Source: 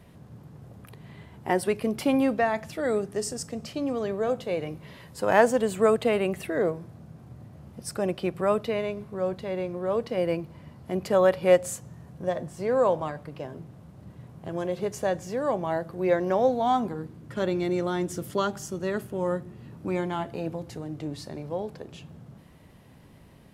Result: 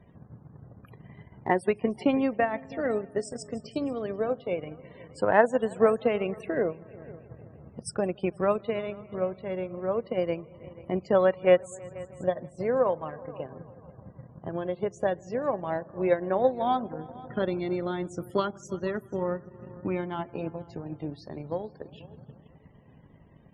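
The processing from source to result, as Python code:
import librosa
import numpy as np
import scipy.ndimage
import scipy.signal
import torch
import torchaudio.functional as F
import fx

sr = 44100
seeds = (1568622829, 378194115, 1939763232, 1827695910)

y = fx.echo_heads(x, sr, ms=161, heads='all three', feedback_pct=46, wet_db=-21.0)
y = fx.spec_topn(y, sr, count=64)
y = fx.transient(y, sr, attack_db=6, sustain_db=-6)
y = y * 10.0 ** (-3.5 / 20.0)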